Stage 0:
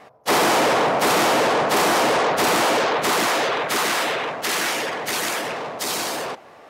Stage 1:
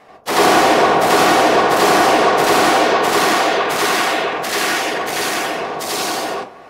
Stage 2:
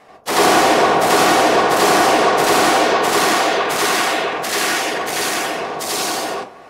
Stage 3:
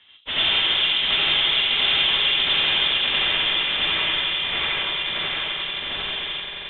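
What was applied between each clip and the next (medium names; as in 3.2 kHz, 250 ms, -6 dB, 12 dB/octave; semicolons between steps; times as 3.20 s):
reverberation RT60 0.35 s, pre-delay 83 ms, DRR -5 dB; trim -1 dB
peaking EQ 8.7 kHz +3.5 dB 1.4 oct; trim -1 dB
echo with a slow build-up 88 ms, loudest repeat 8, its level -15.5 dB; frequency inversion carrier 3.9 kHz; trim -7.5 dB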